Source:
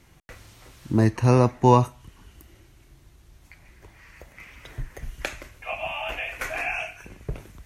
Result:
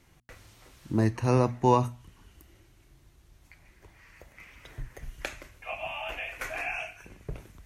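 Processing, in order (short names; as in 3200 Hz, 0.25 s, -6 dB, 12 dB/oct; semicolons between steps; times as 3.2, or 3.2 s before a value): notches 60/120/180/240 Hz; gain -5 dB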